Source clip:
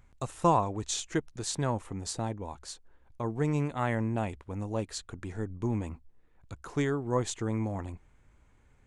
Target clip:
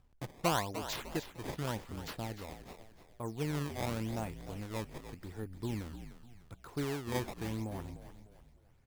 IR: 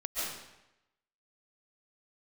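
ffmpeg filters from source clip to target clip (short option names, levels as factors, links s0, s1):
-filter_complex "[0:a]acrusher=samples=18:mix=1:aa=0.000001:lfo=1:lforange=28.8:lforate=0.87,asplit=2[s0][s1];[s1]asplit=4[s2][s3][s4][s5];[s2]adelay=300,afreqshift=-59,volume=0.282[s6];[s3]adelay=600,afreqshift=-118,volume=0.116[s7];[s4]adelay=900,afreqshift=-177,volume=0.0473[s8];[s5]adelay=1200,afreqshift=-236,volume=0.0195[s9];[s6][s7][s8][s9]amix=inputs=4:normalize=0[s10];[s0][s10]amix=inputs=2:normalize=0,volume=0.447"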